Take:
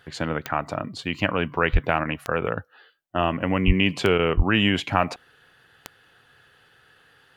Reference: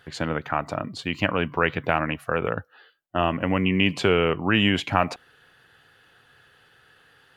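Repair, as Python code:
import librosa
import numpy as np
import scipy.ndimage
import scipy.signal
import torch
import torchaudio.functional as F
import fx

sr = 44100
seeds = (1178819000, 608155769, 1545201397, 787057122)

y = fx.fix_declick_ar(x, sr, threshold=10.0)
y = fx.highpass(y, sr, hz=140.0, slope=24, at=(1.72, 1.84), fade=0.02)
y = fx.highpass(y, sr, hz=140.0, slope=24, at=(3.66, 3.78), fade=0.02)
y = fx.highpass(y, sr, hz=140.0, slope=24, at=(4.36, 4.48), fade=0.02)
y = fx.fix_interpolate(y, sr, at_s=(2.04, 4.18), length_ms=11.0)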